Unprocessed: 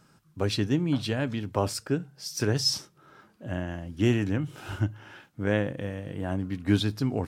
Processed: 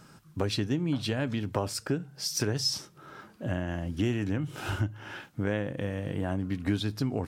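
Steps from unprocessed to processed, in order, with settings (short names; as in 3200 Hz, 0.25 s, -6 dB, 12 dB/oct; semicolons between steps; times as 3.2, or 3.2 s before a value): compressor 3:1, threshold -35 dBFS, peak gain reduction 13.5 dB; gain +6.5 dB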